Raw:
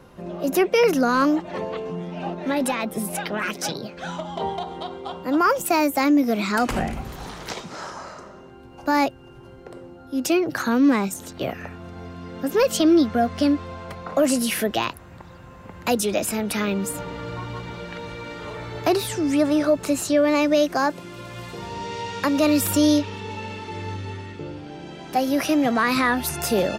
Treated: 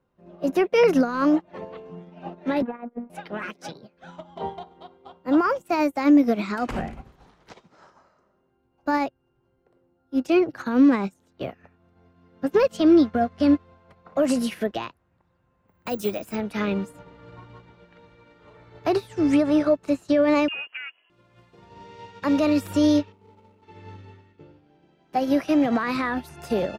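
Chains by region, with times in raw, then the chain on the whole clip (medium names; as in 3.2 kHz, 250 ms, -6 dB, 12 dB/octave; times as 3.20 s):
2.62–3.10 s: low-pass 1.8 kHz 24 dB/octave + robot voice 238 Hz
15.68–16.36 s: peaking EQ 11 kHz +2.5 dB + careless resampling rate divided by 2×, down filtered, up zero stuff
20.48–21.10 s: careless resampling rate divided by 8×, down none, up filtered + compression 8:1, threshold -21 dBFS + frequency inversion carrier 3.1 kHz
23.12–23.63 s: median filter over 25 samples + bass shelf 180 Hz -3.5 dB + band-stop 1.7 kHz, Q 7.2
whole clip: low-pass 2.7 kHz 6 dB/octave; peak limiter -15.5 dBFS; upward expansion 2.5:1, over -39 dBFS; trim +6.5 dB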